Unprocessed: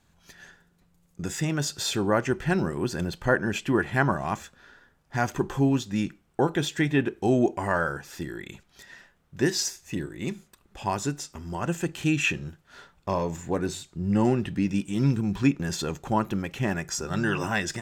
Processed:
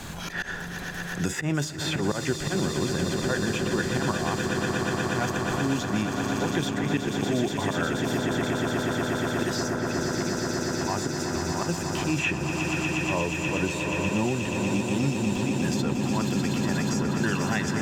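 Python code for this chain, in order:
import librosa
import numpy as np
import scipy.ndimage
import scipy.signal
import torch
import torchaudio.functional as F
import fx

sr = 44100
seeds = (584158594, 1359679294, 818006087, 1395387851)

y = fx.auto_swell(x, sr, attack_ms=131.0)
y = fx.echo_swell(y, sr, ms=120, loudest=8, wet_db=-10.0)
y = fx.band_squash(y, sr, depth_pct=100)
y = y * 10.0 ** (-1.5 / 20.0)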